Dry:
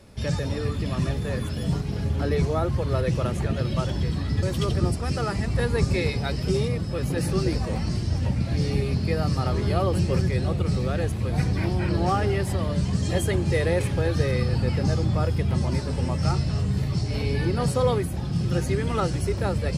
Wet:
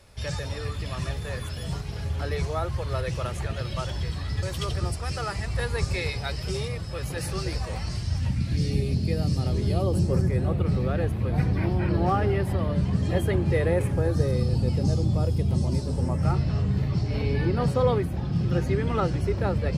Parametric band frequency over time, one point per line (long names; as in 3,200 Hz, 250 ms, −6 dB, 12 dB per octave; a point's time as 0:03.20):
parametric band −13 dB 1.7 octaves
0:07.90 240 Hz
0:08.82 1,200 Hz
0:09.68 1,200 Hz
0:10.64 7,100 Hz
0:13.51 7,100 Hz
0:14.49 1,700 Hz
0:15.86 1,700 Hz
0:16.49 9,600 Hz